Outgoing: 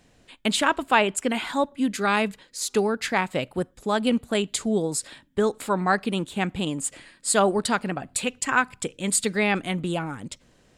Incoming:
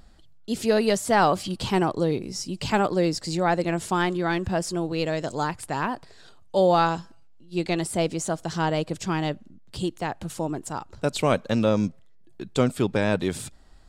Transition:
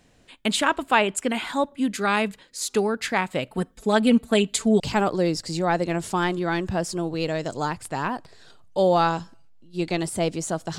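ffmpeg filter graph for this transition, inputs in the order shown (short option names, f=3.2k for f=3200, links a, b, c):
-filter_complex "[0:a]asettb=1/sr,asplit=3[a][b][c];[a]atrim=end=3.514[d];[b]atrim=start=3.51:end=4.8,asetpts=PTS-STARTPTS,afade=t=in:d=0.004:c=qsin,afade=t=out:st=1.286:d=0.004:c=qsin,aecho=1:1:4.5:0.85,atrim=end_sample=56889[e];[c]atrim=start=4.796[f];[d][e]acrossfade=d=0.004:c1=hsin:c2=qsin[g];[g][f]acrossfade=d=0.004:c1=qsin:c2=hsin,apad=whole_dur=10.78,atrim=end=10.78,atrim=end=4.802[h];[1:a]atrim=start=2.578:end=8.56[i];[h][i]acrossfade=d=0.004:c1=hsin:c2=hsin"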